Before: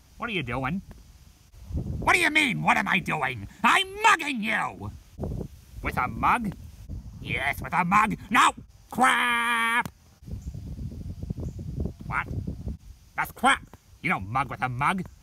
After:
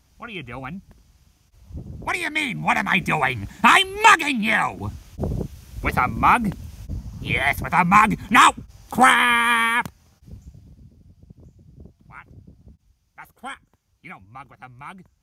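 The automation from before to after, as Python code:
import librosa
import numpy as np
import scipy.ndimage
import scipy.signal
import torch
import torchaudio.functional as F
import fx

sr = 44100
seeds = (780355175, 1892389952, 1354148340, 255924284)

y = fx.gain(x, sr, db=fx.line((2.19, -4.5), (3.15, 6.5), (9.52, 6.5), (10.34, -4.5), (10.95, -14.0)))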